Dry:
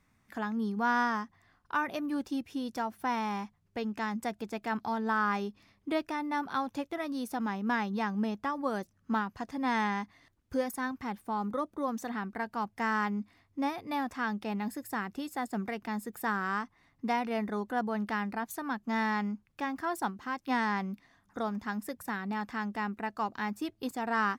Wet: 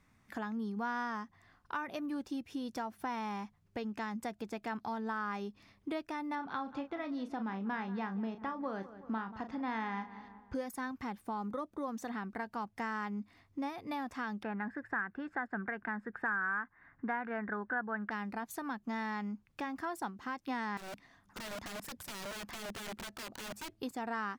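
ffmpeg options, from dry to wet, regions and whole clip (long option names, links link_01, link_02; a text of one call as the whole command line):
ffmpeg -i in.wav -filter_complex "[0:a]asettb=1/sr,asplit=3[link_01][link_02][link_03];[link_01]atrim=end=6.354[link_04];[link_02]atrim=start=6.35:end=10.55,asetpts=PTS-STARTPTS,afade=type=in:duration=0.004:curve=qsin,afade=type=out:start_time=4.196:duration=0.004:curve=qsin,lowpass=3700,asplit=2[link_05][link_06];[link_06]adelay=36,volume=-9.5dB[link_07];[link_05][link_07]amix=inputs=2:normalize=0,atrim=end_sample=185220,asplit=2[link_08][link_09];[link_09]adelay=186,lowpass=frequency=2000:poles=1,volume=-18dB,asplit=2[link_10][link_11];[link_11]adelay=186,lowpass=frequency=2000:poles=1,volume=0.48,asplit=2[link_12][link_13];[link_13]adelay=186,lowpass=frequency=2000:poles=1,volume=0.48,asplit=2[link_14][link_15];[link_15]adelay=186,lowpass=frequency=2000:poles=1,volume=0.48[link_16];[link_08][link_10][link_12][link_14][link_16]amix=inputs=5:normalize=0,atrim=end_sample=185220[link_17];[link_03]atrim=start=10.546[link_18];[link_04][link_17]acrossfade=duration=0.004:curve1=hsin:curve2=qsin[link_19];[link_19][link_18]acrossfade=duration=0.004:curve1=qsin:curve2=hsin,asettb=1/sr,asplit=3[link_20][link_21][link_22];[link_20]atrim=end=14.434[link_23];[link_21]atrim=start=14.43:end=18.11,asetpts=PTS-STARTPTS,afade=type=in:duration=0.004:curve=qsin,afade=type=out:start_time=3.676:duration=0.004:curve=qsin,lowpass=frequency=1600:width_type=q:width=7.7,deesser=0.95[link_24];[link_22]atrim=start=18.106[link_25];[link_23][link_24]acrossfade=duration=0.004:curve1=hsin:curve2=qsin[link_26];[link_26][link_25]acrossfade=duration=0.004:curve1=qsin:curve2=hsin,asettb=1/sr,asplit=3[link_27][link_28][link_29];[link_27]atrim=end=20.774[link_30];[link_28]atrim=start=20.77:end=23.71,asetpts=PTS-STARTPTS,afade=type=in:duration=0.004:curve=qsin,afade=type=out:start_time=2.936:duration=0.004:curve=qsin,acompressor=threshold=-38dB:ratio=5:attack=3.2:release=140:knee=1:detection=peak,aeval=exprs='(mod(89.1*val(0)+1,2)-1)/89.1':channel_layout=same[link_31];[link_29]atrim=start=23.706[link_32];[link_30][link_31]acrossfade=duration=0.004:curve1=hsin:curve2=qsin[link_33];[link_33][link_32]acrossfade=duration=0.004:curve1=qsin:curve2=hsin,highshelf=frequency=9900:gain=-5,acompressor=threshold=-40dB:ratio=2.5,volume=1.5dB" out.wav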